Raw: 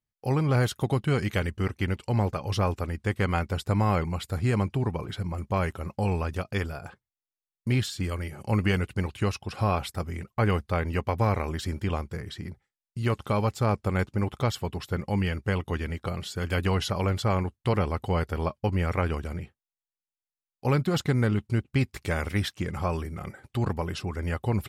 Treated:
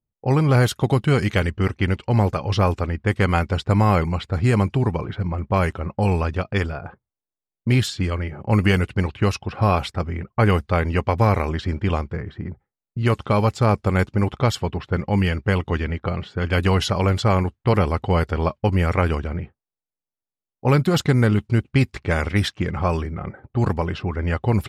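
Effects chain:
low-pass that shuts in the quiet parts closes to 640 Hz, open at −21.5 dBFS
level +7 dB

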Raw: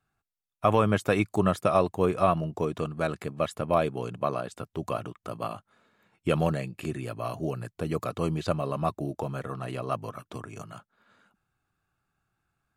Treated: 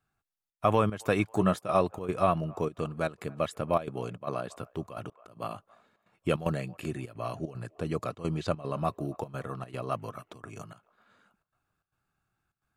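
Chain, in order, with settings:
0:01.30–0:01.80: double-tracking delay 16 ms −10 dB
0:05.10–0:05.50: fade in
0:07.19–0:08.78: low-pass filter 9,700 Hz 12 dB per octave
delay with a band-pass on its return 273 ms, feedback 47%, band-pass 1,100 Hz, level −24 dB
gate pattern "xxxxx.xxx.x" 151 BPM −12 dB
level −2 dB

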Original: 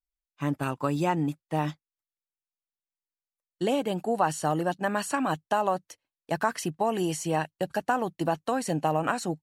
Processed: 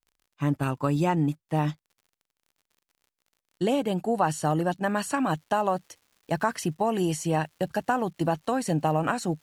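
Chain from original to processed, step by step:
low-shelf EQ 160 Hz +9 dB
surface crackle 48 per second −50 dBFS, from 0:04.83 380 per second

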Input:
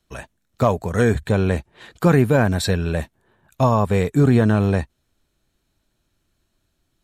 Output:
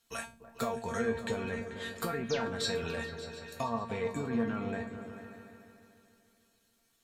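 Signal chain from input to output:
treble cut that deepens with the level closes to 2,500 Hz, closed at −13 dBFS
spectral tilt +2.5 dB per octave
in parallel at +3 dB: brickwall limiter −13 dBFS, peak gain reduction 7.5 dB
on the sum: downward compressor, threshold −19 dBFS, peak gain reduction 10 dB
hard clipping −10.5 dBFS, distortion −29 dB
sound drawn into the spectrogram fall, 0:02.29–0:02.49, 270–7,300 Hz −28 dBFS
tuned comb filter 230 Hz, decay 0.28 s, harmonics all, mix 90%
surface crackle 440 per second −66 dBFS
on a send: echo whose low-pass opens from repeat to repeat 146 ms, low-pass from 200 Hz, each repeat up 2 octaves, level −6 dB

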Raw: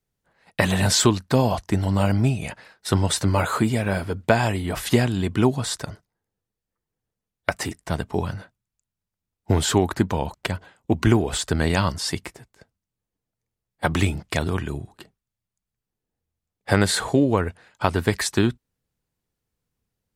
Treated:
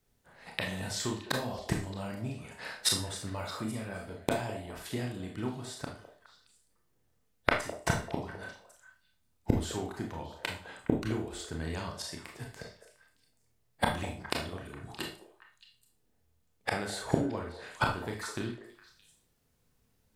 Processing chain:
gate with flip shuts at −20 dBFS, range −24 dB
echo through a band-pass that steps 207 ms, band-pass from 540 Hz, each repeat 1.4 octaves, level −9 dB
four-comb reverb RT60 0.36 s, combs from 25 ms, DRR 1 dB
level +5.5 dB

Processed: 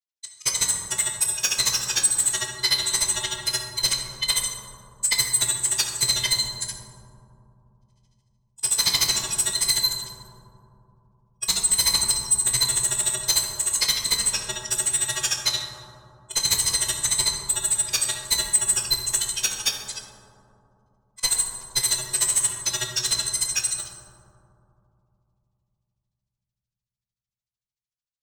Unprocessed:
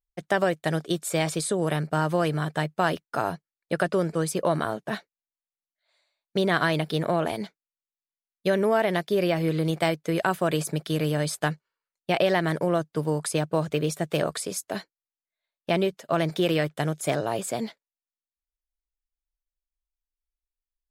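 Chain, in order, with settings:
samples in bit-reversed order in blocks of 128 samples
meter weighting curve ITU-R 468
noise reduction from a noise print of the clip's start 23 dB
high-shelf EQ 3,900 Hz +12 dB
soft clipping −22.5 dBFS, distortion −2 dB
granular cloud 39 ms, grains 18 per second, spray 16 ms, pitch spread up and down by 0 semitones
convolution reverb RT60 2.2 s, pre-delay 3 ms, DRR 0.5 dB
wrong playback speed 45 rpm record played at 33 rpm
in parallel at −9 dB: gain into a clipping stage and back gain 30.5 dB
on the sum: level +6 dB

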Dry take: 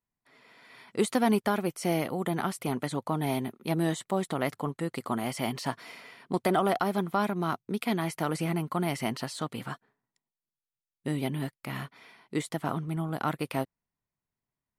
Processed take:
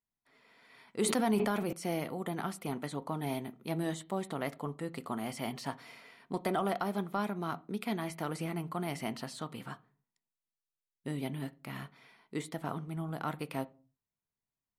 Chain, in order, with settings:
on a send at −13 dB: elliptic low-pass filter 4,100 Hz + convolution reverb RT60 0.35 s, pre-delay 4 ms
0:01.02–0:01.73: on the sum: level that may fall only so fast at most 24 dB per second
level −6.5 dB

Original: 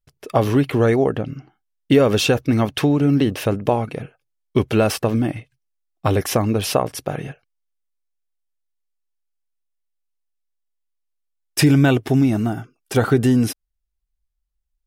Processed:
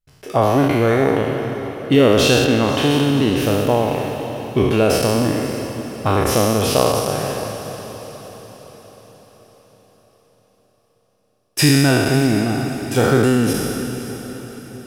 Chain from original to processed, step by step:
peak hold with a decay on every bin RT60 1.99 s
0:02.45–0:02.91: bass and treble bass −2 dB, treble −7 dB
on a send: feedback delay with all-pass diffusion 550 ms, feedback 49%, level −11.5 dB
on the sum: level −2 dB

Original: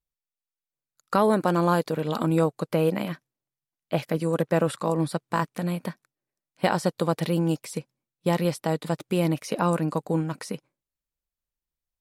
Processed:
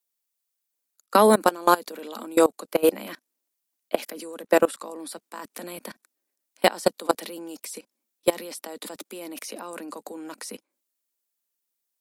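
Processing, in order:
Butterworth high-pass 210 Hz 72 dB per octave
high-shelf EQ 5,000 Hz +12 dB
output level in coarse steps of 22 dB
level +7 dB

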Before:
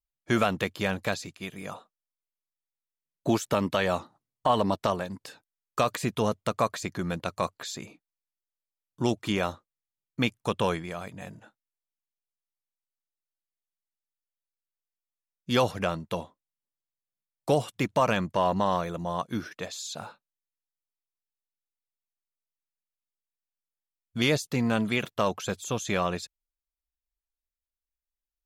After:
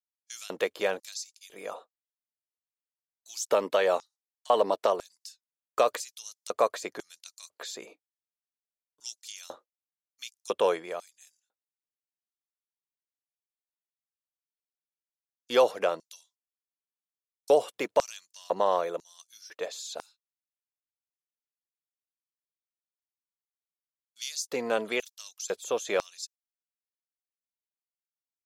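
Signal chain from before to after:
noise gate −48 dBFS, range −13 dB
auto-filter high-pass square 1 Hz 470–5,600 Hz
level −2.5 dB

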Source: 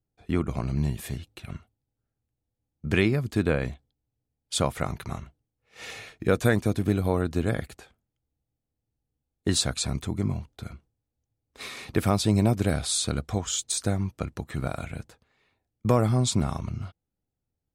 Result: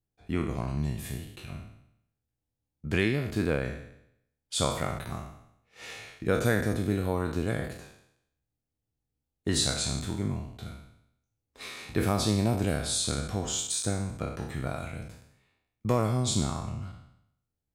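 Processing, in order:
peak hold with a decay on every bin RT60 0.75 s
level −5 dB

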